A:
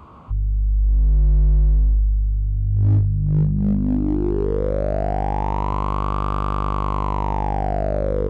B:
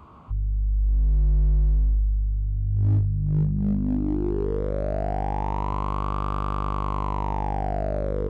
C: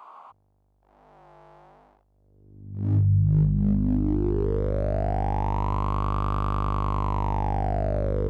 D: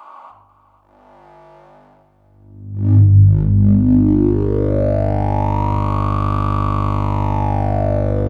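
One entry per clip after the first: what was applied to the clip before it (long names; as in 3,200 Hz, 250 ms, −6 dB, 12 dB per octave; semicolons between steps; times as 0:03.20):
notch filter 520 Hz, Q 12; level −4.5 dB
high-pass filter sweep 790 Hz → 66 Hz, 0:02.07–0:03.36
repeating echo 493 ms, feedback 38%, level −16 dB; rectangular room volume 2,800 cubic metres, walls furnished, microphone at 2.5 metres; level +6 dB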